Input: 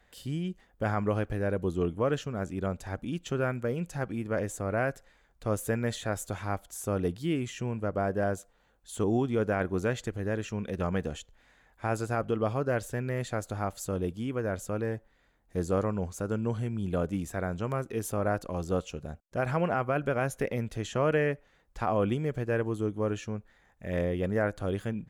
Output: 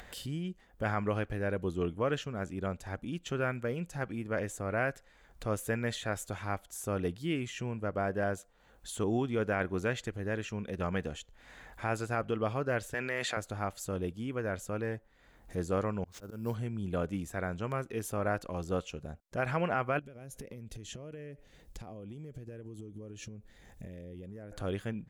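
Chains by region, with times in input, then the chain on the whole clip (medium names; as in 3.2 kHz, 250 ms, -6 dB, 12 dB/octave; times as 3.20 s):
12.94–13.37 s: frequency weighting A + level flattener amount 70%
16.04–16.55 s: slow attack 178 ms + sample-rate reducer 13 kHz
19.99–24.52 s: peaking EQ 1.2 kHz -13.5 dB 1.8 oct + compression 10:1, threshold -42 dBFS
whole clip: upward compressor, threshold -33 dBFS; dynamic bell 2.4 kHz, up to +6 dB, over -45 dBFS, Q 0.73; trim -4 dB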